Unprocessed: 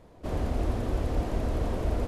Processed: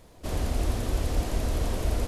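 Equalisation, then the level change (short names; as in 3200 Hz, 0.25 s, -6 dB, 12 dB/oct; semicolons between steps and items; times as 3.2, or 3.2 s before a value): low shelf 83 Hz +5.5 dB; high shelf 2300 Hz +12 dB; high shelf 5400 Hz +4 dB; -2.0 dB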